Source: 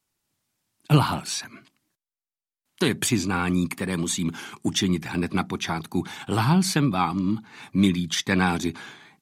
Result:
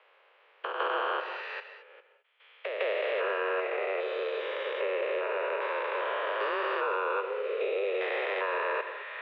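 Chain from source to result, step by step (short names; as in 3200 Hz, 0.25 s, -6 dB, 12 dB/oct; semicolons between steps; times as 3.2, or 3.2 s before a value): stepped spectrum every 0.4 s; pre-echo 0.156 s -13.5 dB; non-linear reverb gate 0.24 s flat, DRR 10 dB; mistuned SSB +200 Hz 280–2700 Hz; in parallel at +0.5 dB: limiter -26.5 dBFS, peak gain reduction 8.5 dB; on the sum: three-band squash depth 70%; gain -3.5 dB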